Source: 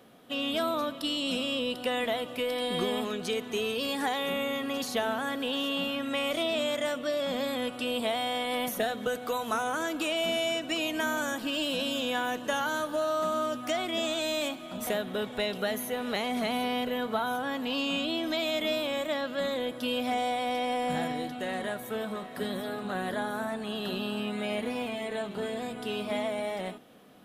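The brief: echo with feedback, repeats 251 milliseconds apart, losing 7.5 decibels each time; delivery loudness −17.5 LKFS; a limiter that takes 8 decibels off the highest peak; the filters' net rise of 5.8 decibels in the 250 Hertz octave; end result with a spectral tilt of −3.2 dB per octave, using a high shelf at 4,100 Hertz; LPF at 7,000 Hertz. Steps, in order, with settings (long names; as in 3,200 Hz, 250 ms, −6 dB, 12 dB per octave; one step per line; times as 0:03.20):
low-pass filter 7,000 Hz
parametric band 250 Hz +6.5 dB
high-shelf EQ 4,100 Hz −6.5 dB
brickwall limiter −23.5 dBFS
repeating echo 251 ms, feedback 42%, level −7.5 dB
level +13 dB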